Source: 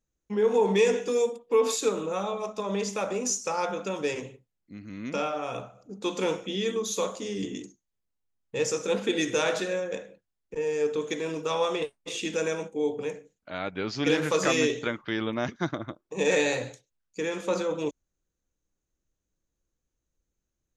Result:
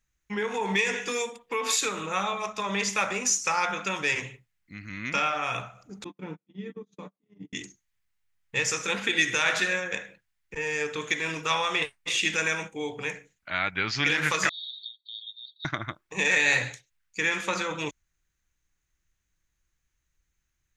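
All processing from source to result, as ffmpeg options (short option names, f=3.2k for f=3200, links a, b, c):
-filter_complex "[0:a]asettb=1/sr,asplit=3[a][b][c];[a]atrim=end=6.044[d];[b]atrim=start=6.04:end=7.53,asetpts=PTS-STARTPTS,afade=t=in:d=0.004:c=qsin,afade=t=out:st=1.486:d=0.004:c=qsin,agate=range=-38dB:threshold=-30dB:ratio=16:release=100:detection=peak,bandpass=f=220:t=q:w=1.7,aecho=1:1:6.8:0.44,atrim=end_sample=65709[e];[c]atrim=start=7.526[f];[d][e]acrossfade=d=0.004:c1=hsin:c2=qsin[g];[g][f]acrossfade=d=0.004:c1=qsin:c2=hsin,asettb=1/sr,asplit=3[h][i][j];[h]atrim=end=14.494[k];[i]atrim=start=14.49:end=15.65,asetpts=PTS-STARTPTS,afade=t=in:d=0.004:c=qsin,afade=t=out:st=1.156:d=0.004:c=qsin,aecho=1:1:1.6:0.91,atrim=end_sample=51156,acompressor=threshold=-25dB:ratio=2.5:attack=3.2:release=140:knee=1:detection=peak,asuperpass=centerf=3900:order=12:qfactor=3.8[l];[j]atrim=start=15.646[m];[k][l]acrossfade=d=0.004:c1=hsin:c2=qsin[n];[n][m]acrossfade=d=0.004:c1=qsin:c2=hsin,alimiter=limit=-18.5dB:level=0:latency=1:release=166,equalizer=f=250:t=o:w=1:g=-8,equalizer=f=500:t=o:w=1:g=-11,equalizer=f=2k:t=o:w=1:g=9,volume=5.5dB"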